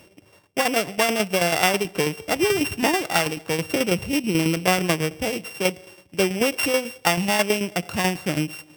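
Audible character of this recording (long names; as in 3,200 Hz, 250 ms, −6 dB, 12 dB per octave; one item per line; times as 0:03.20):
a buzz of ramps at a fixed pitch in blocks of 16 samples
tremolo saw down 9.2 Hz, depth 60%
Opus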